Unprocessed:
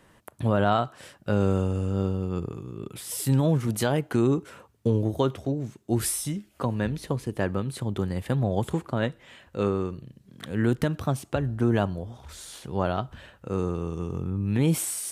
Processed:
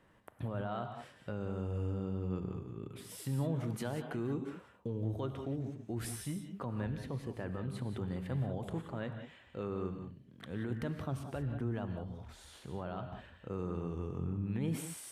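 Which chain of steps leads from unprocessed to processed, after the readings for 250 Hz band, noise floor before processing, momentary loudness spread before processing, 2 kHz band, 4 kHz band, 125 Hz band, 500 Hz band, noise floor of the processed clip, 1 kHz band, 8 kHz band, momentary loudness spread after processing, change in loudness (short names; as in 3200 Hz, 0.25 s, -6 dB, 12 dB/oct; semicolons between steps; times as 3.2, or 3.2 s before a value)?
-11.5 dB, -59 dBFS, 12 LU, -13.0 dB, -14.0 dB, -10.5 dB, -13.0 dB, -61 dBFS, -14.0 dB, -16.5 dB, 9 LU, -12.0 dB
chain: tone controls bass 0 dB, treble -9 dB; limiter -20 dBFS, peak gain reduction 10.5 dB; non-linear reverb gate 0.21 s rising, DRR 6.5 dB; gain -8.5 dB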